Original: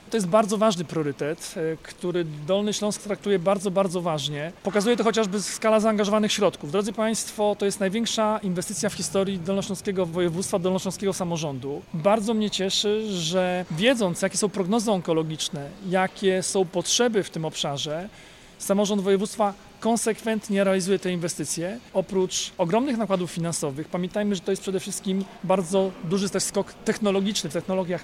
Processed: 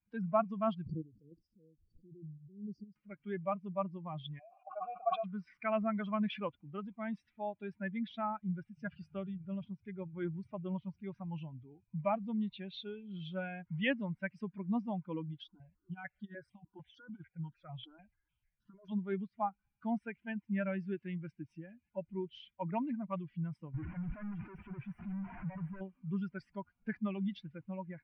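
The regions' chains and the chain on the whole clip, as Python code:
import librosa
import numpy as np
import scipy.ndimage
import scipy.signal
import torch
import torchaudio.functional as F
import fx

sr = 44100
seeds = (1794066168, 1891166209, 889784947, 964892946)

y = fx.chain(x, sr, fx.brickwall_bandstop(low_hz=530.0, high_hz=4400.0),
    fx.chopper(hz=2.2, depth_pct=60, duty_pct=35),
    fx.pre_swell(db_per_s=51.0), at=(0.86, 2.96))
y = fx.chain(y, sr, fx.vowel_filter(vowel='a'),
    fx.peak_eq(hz=670.0, db=8.5, octaves=1.3),
    fx.sustainer(db_per_s=44.0), at=(4.39, 5.24))
y = fx.chain(y, sr, fx.over_compress(threshold_db=-23.0, ratio=-0.5),
    fx.phaser_held(hz=6.7, low_hz=560.0, high_hz=2300.0), at=(15.45, 18.92))
y = fx.chain(y, sr, fx.clip_1bit(),
    fx.peak_eq(hz=4000.0, db=-14.5, octaves=1.0), at=(23.74, 25.81))
y = fx.bin_expand(y, sr, power=2.0)
y = scipy.signal.sosfilt(scipy.signal.cheby2(4, 50, 6400.0, 'lowpass', fs=sr, output='sos'), y)
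y = fx.peak_eq(y, sr, hz=450.0, db=-15.0, octaves=0.61)
y = F.gain(torch.from_numpy(y), -5.5).numpy()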